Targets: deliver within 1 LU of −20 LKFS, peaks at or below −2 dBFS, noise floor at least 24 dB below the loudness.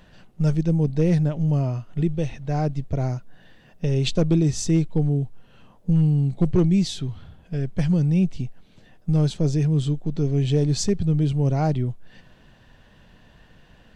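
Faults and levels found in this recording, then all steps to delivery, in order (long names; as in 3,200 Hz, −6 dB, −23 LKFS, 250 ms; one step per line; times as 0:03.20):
share of clipped samples 0.3%; peaks flattened at −12.0 dBFS; integrated loudness −22.5 LKFS; sample peak −12.0 dBFS; target loudness −20.0 LKFS
→ clipped peaks rebuilt −12 dBFS
level +2.5 dB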